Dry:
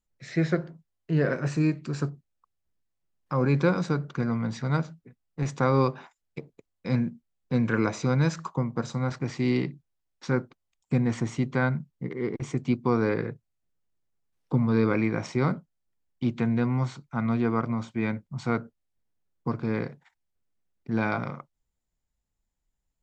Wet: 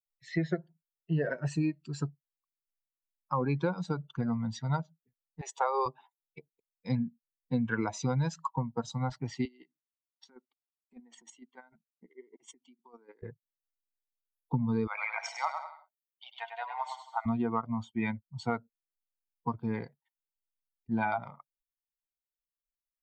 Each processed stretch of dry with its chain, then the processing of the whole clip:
5.41–5.86 s: steep high-pass 360 Hz 72 dB/octave + upward compressor, threshold -39 dBFS
9.45–13.23 s: high-pass 220 Hz 24 dB/octave + compression 8:1, threshold -32 dBFS + square tremolo 6.6 Hz, depth 60%, duty 20%
14.87–17.26 s: steep high-pass 610 Hz + bouncing-ball echo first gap 100 ms, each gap 0.85×, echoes 5
whole clip: expander on every frequency bin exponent 2; peaking EQ 860 Hz +9.5 dB 0.76 oct; compression 6:1, threshold -31 dBFS; trim +4.5 dB

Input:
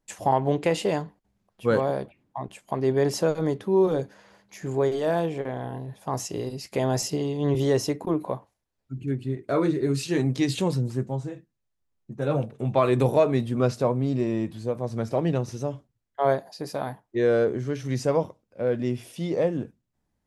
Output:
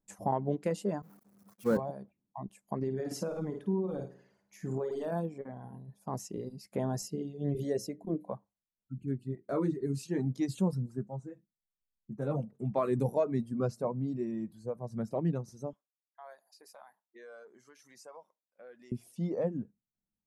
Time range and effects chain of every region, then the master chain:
1.02–1.77 s: jump at every zero crossing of -25.5 dBFS + high-pass 160 Hz + expander -25 dBFS
2.76–5.12 s: peaking EQ 2.7 kHz +4.5 dB 0.92 oct + flutter echo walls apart 9.1 m, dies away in 0.6 s + compression, threshold -21 dBFS
7.06–8.29 s: high-order bell 1.1 kHz -14 dB 1 oct + hum notches 60/120/180/240/300/360/420/480/540/600 Hz
15.73–18.92 s: high-pass 1 kHz + compression 2:1, threshold -42 dBFS
whole clip: peaking EQ 3.1 kHz -11.5 dB 1.4 oct; reverb removal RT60 2 s; peaking EQ 200 Hz +10.5 dB 0.48 oct; trim -8 dB

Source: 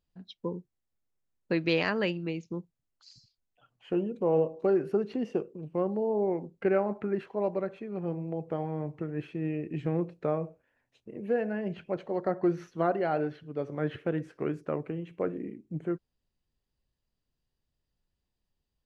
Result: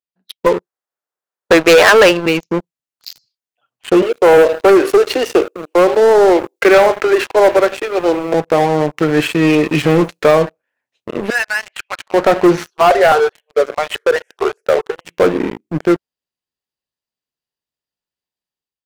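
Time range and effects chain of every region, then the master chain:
0.46–2.26 s: high-pass 220 Hz 6 dB/octave + high-order bell 800 Hz +9 dB 2.4 oct
4.02–8.34 s: Chebyshev high-pass 300 Hz, order 5 + treble shelf 4.1 kHz +10 dB + delay 84 ms -18.5 dB
8.97–10.31 s: treble shelf 2.9 kHz +9.5 dB + comb 6.8 ms, depth 36%
11.30–12.14 s: high-pass 1.1 kHz 24 dB/octave + distance through air 67 m
12.70–15.05 s: brick-wall FIR high-pass 360 Hz + stepped phaser 4.8 Hz 530–1600 Hz
whole clip: high-pass 730 Hz 6 dB/octave; level rider gain up to 10 dB; waveshaping leveller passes 5

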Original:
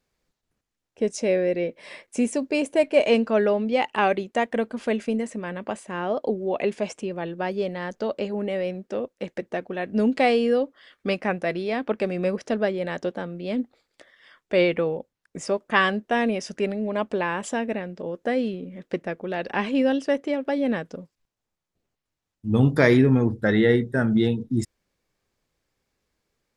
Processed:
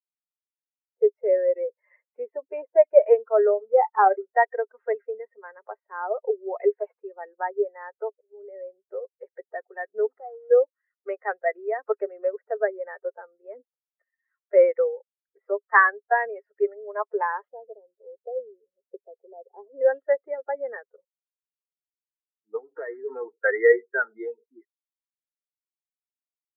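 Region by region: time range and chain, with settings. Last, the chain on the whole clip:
3.25–4.34 s: low-pass 3.7 kHz 6 dB/octave + doubling 31 ms -12 dB + decimation joined by straight lines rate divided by 8×
8.08–8.88 s: peaking EQ 1.4 kHz -9.5 dB 2.3 oct + slow attack 214 ms
10.06–10.51 s: block-companded coder 3-bit + low-pass 1.1 kHz + compression, threshold -30 dBFS
17.48–19.81 s: four-pole ladder low-pass 830 Hz, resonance 20% + peaking EQ 190 Hz +3 dB 1.7 oct
22.58–23.09 s: sorted samples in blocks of 8 samples + compression 8:1, threshold -19 dBFS + distance through air 170 m
whole clip: expander on every frequency bin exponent 2; Chebyshev band-pass 410–1900 Hz, order 5; level rider gain up to 11 dB; trim -1.5 dB

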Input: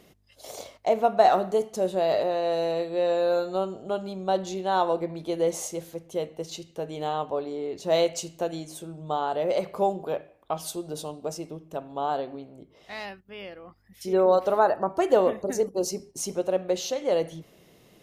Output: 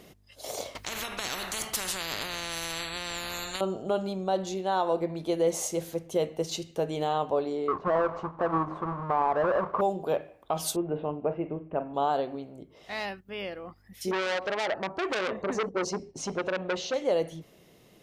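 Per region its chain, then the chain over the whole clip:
0.75–3.61 s: compression 4:1, threshold -23 dBFS + spectrum-flattening compressor 10:1
7.68–9.81 s: square wave that keeps the level + resonant low-pass 1.1 kHz, resonance Q 7.1
10.76–11.94 s: steep low-pass 2.6 kHz 48 dB/octave + doubling 41 ms -12 dB
14.11–16.94 s: distance through air 130 m + transformer saturation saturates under 3.3 kHz
whole clip: gain riding within 4 dB 0.5 s; peak limiter -16.5 dBFS

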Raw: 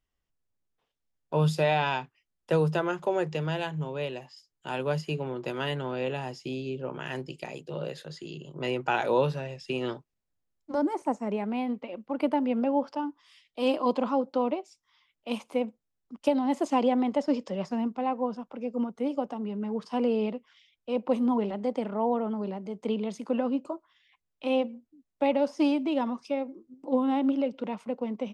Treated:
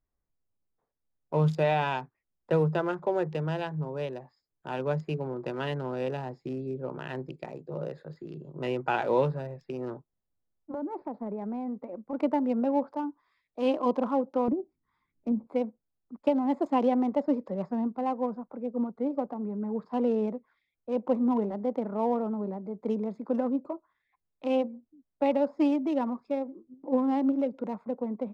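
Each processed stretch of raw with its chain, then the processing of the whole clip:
9.64–12.13 s: treble shelf 2.9 kHz -7.5 dB + compression 5:1, threshold -30 dBFS + careless resampling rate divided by 4×, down none, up filtered
14.48–15.47 s: low-pass that closes with the level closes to 520 Hz, closed at -30.5 dBFS + resonant low shelf 420 Hz +11 dB, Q 1.5 + compression 3:1, threshold -25 dBFS
whole clip: local Wiener filter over 15 samples; treble shelf 3.3 kHz -9 dB

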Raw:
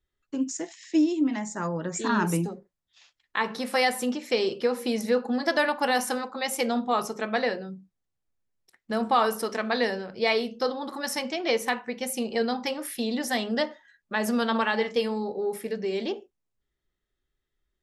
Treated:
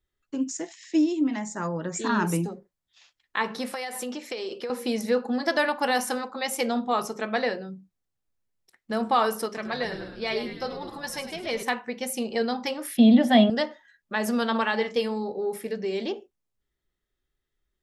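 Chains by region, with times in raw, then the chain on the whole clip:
3.72–4.70 s: high-pass 290 Hz + compression 12:1, threshold -28 dBFS
9.46–11.63 s: frequency-shifting echo 102 ms, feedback 58%, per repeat -70 Hz, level -10.5 dB + flange 1 Hz, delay 4.7 ms, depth 1.3 ms, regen +44%
12.97–13.50 s: resonant high shelf 4 kHz -8.5 dB, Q 1.5 + small resonant body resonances 210/630/3300 Hz, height 16 dB, ringing for 35 ms
whole clip: none

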